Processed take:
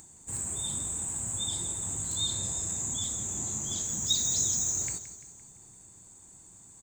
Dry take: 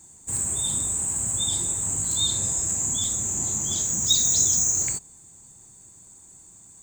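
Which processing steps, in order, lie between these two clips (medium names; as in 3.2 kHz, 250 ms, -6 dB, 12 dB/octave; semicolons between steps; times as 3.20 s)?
treble shelf 8.4 kHz -6 dB; upward compressor, threshold -41 dBFS; feedback delay 171 ms, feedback 52%, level -13 dB; trim -5.5 dB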